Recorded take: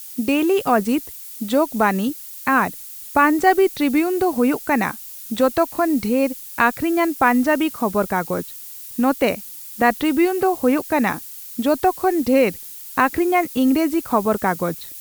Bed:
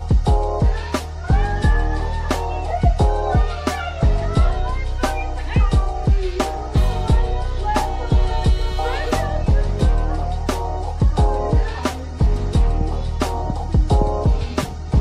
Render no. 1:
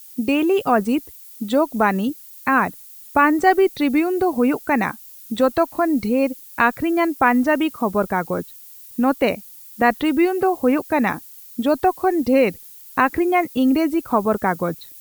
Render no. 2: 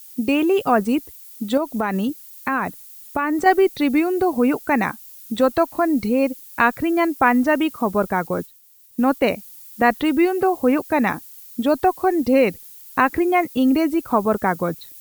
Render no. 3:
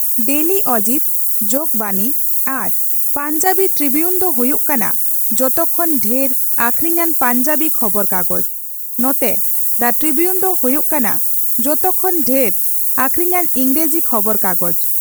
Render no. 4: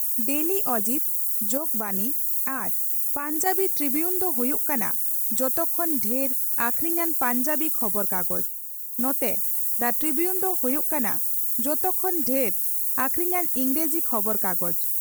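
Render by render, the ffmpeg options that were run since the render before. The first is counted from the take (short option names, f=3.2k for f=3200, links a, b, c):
-af "afftdn=nr=8:nf=-36"
-filter_complex "[0:a]asettb=1/sr,asplit=3[a][b][c];[a]atrim=end=1.574[d];[b]atrim=start=1.57:end=3.46,asetpts=PTS-STARTPTS,afade=t=in:d=0.004:c=qsin,afade=t=out:st=1.886:d=0.004:c=qsin,acompressor=threshold=-17dB:ratio=6:attack=3.2:release=140:knee=1:detection=peak[e];[c]atrim=start=3.456[f];[d][e]acrossfade=d=0.004:c1=hsin:c2=qsin[g];[g][f]acrossfade=d=0.004:c1=qsin:c2=hsin,asettb=1/sr,asplit=3[h][i][j];[h]atrim=end=7.864[k];[i]atrim=start=7.86:end=9.3,asetpts=PTS-STARTPTS,afade=t=in:d=0.004:c=qsin,afade=t=out:st=1.436:d=0.004:c=qsin,agate=range=-33dB:threshold=-35dB:ratio=3:release=100:detection=peak[l];[j]atrim=start=9.296[m];[k][l]acrossfade=d=0.004:c1=hsin:c2=qsin[n];[n][m]acrossfade=d=0.004:c1=qsin:c2=hsin"
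-af "aexciter=amount=13.2:drive=6.3:freq=5.6k,asoftclip=type=tanh:threshold=-1.5dB"
-af "volume=-9.5dB"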